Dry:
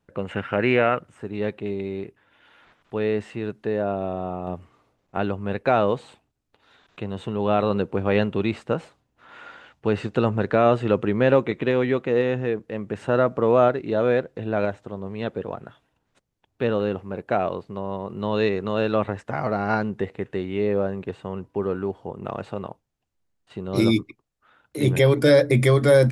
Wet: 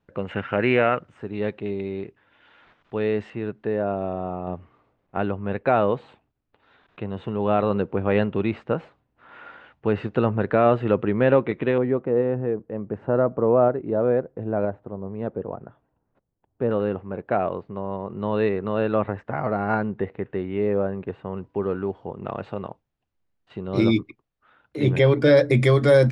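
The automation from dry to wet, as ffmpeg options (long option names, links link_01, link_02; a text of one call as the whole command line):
ffmpeg -i in.wav -af "asetnsamples=nb_out_samples=441:pad=0,asendcmd='3.3 lowpass f 2600;11.78 lowpass f 1000;16.71 lowpass f 2100;21.37 lowpass f 3600;25.37 lowpass f 6300',lowpass=4300" out.wav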